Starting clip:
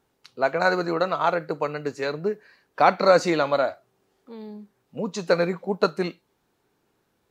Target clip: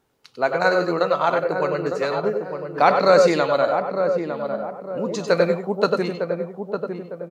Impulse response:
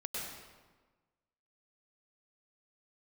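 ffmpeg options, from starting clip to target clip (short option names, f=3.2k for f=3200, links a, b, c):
-filter_complex "[0:a]asplit=2[a][b];[b]adelay=905,lowpass=f=920:p=1,volume=-5.5dB,asplit=2[c][d];[d]adelay=905,lowpass=f=920:p=1,volume=0.44,asplit=2[e][f];[f]adelay=905,lowpass=f=920:p=1,volume=0.44,asplit=2[g][h];[h]adelay=905,lowpass=f=920:p=1,volume=0.44,asplit=2[i][j];[j]adelay=905,lowpass=f=920:p=1,volume=0.44[k];[a][c][e][g][i][k]amix=inputs=6:normalize=0[l];[1:a]atrim=start_sample=2205,atrim=end_sample=4410[m];[l][m]afir=irnorm=-1:irlink=0,volume=5.5dB"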